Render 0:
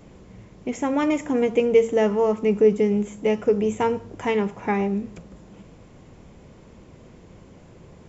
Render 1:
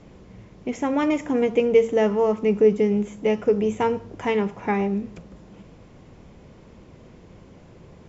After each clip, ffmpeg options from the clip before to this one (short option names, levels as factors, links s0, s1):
-af "lowpass=f=6600:w=0.5412,lowpass=f=6600:w=1.3066"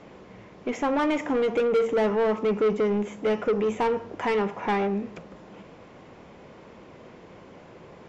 -filter_complex "[0:a]asplit=2[s0][s1];[s1]highpass=f=720:p=1,volume=14.1,asoftclip=type=tanh:threshold=0.473[s2];[s0][s2]amix=inputs=2:normalize=0,lowpass=f=1900:p=1,volume=0.501,volume=0.376"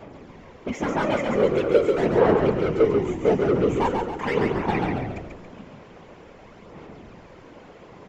-filter_complex "[0:a]aphaser=in_gain=1:out_gain=1:delay=4.9:decay=0.51:speed=0.44:type=sinusoidal,afftfilt=real='hypot(re,im)*cos(2*PI*random(0))':imag='hypot(re,im)*sin(2*PI*random(1))':win_size=512:overlap=0.75,asplit=7[s0][s1][s2][s3][s4][s5][s6];[s1]adelay=138,afreqshift=-43,volume=0.631[s7];[s2]adelay=276,afreqshift=-86,volume=0.292[s8];[s3]adelay=414,afreqshift=-129,volume=0.133[s9];[s4]adelay=552,afreqshift=-172,volume=0.0617[s10];[s5]adelay=690,afreqshift=-215,volume=0.0282[s11];[s6]adelay=828,afreqshift=-258,volume=0.013[s12];[s0][s7][s8][s9][s10][s11][s12]amix=inputs=7:normalize=0,volume=1.78"